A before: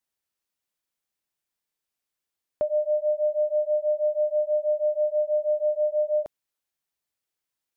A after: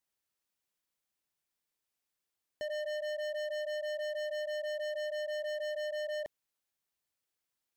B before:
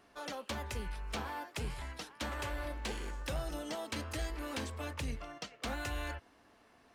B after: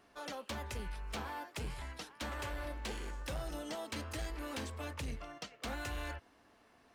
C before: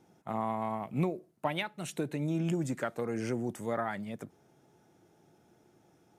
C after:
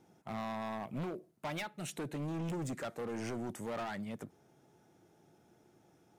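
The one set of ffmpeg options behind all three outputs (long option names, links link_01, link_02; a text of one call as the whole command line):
ffmpeg -i in.wav -af "volume=34dB,asoftclip=hard,volume=-34dB,volume=-1.5dB" out.wav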